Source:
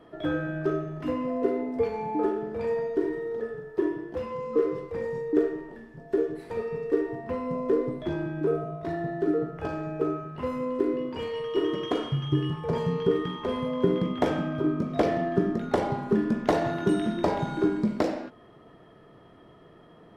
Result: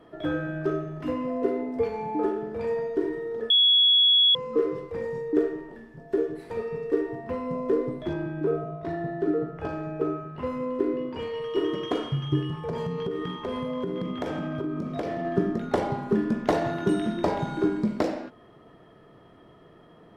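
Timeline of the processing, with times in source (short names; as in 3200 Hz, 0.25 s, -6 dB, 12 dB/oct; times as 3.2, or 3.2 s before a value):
3.5–4.35 bleep 3360 Hz -15.5 dBFS
8.13–11.42 high shelf 6400 Hz -8.5 dB
12.41–15.25 compressor, threshold -26 dBFS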